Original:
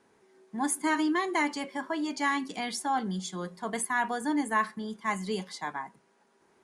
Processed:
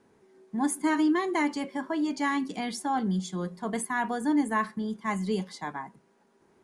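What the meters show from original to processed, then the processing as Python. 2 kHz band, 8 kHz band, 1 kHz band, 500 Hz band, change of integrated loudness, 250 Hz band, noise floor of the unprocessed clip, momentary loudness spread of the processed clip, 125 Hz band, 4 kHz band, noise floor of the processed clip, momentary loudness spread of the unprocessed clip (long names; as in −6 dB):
−2.0 dB, −2.5 dB, −0.5 dB, +2.0 dB, +1.5 dB, +4.5 dB, −67 dBFS, 10 LU, +5.5 dB, −2.5 dB, −65 dBFS, 9 LU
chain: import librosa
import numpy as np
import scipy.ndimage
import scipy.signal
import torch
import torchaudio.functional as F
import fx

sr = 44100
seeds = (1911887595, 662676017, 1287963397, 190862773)

y = fx.low_shelf(x, sr, hz=450.0, db=9.5)
y = y * 10.0 ** (-2.5 / 20.0)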